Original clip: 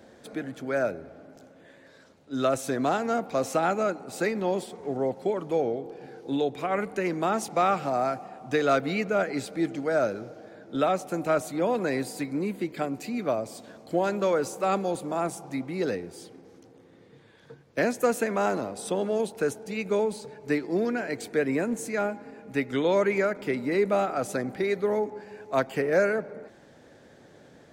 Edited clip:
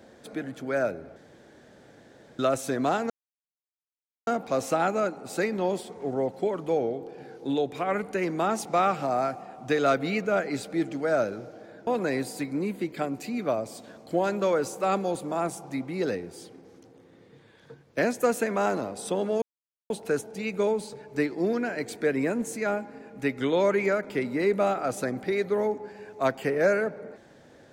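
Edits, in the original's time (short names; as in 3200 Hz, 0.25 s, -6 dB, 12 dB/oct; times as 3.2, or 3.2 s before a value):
1.16–2.39 room tone
3.1 insert silence 1.17 s
10.7–11.67 cut
19.22 insert silence 0.48 s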